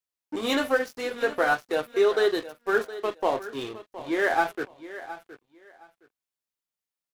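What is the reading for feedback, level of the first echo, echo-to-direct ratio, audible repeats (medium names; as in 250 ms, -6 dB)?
20%, -15.0 dB, -15.0 dB, 2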